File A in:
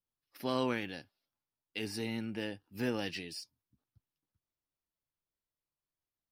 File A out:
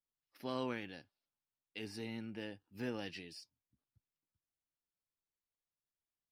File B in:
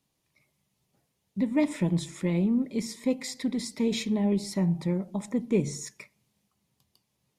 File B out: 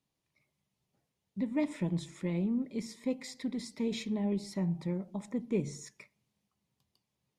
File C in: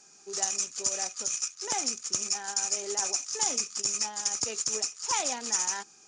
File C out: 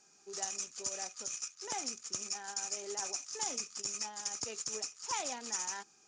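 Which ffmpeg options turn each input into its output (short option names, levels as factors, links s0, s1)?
-af "highshelf=f=8400:g=-8,volume=0.473"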